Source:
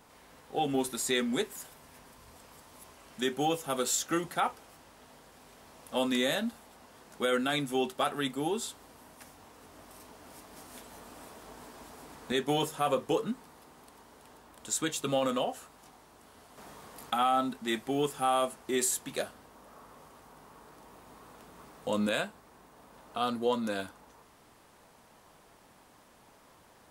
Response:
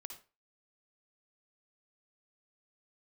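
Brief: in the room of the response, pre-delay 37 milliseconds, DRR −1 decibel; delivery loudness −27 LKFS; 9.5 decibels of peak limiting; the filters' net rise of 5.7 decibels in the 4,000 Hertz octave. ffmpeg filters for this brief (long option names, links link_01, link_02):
-filter_complex "[0:a]equalizer=frequency=4000:width_type=o:gain=7,alimiter=limit=-23dB:level=0:latency=1,asplit=2[link_01][link_02];[1:a]atrim=start_sample=2205,adelay=37[link_03];[link_02][link_03]afir=irnorm=-1:irlink=0,volume=5.5dB[link_04];[link_01][link_04]amix=inputs=2:normalize=0,volume=4.5dB"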